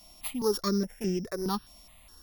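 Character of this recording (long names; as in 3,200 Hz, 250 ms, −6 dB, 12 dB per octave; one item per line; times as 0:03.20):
a buzz of ramps at a fixed pitch in blocks of 8 samples
notches that jump at a steady rate 4.8 Hz 440–4,000 Hz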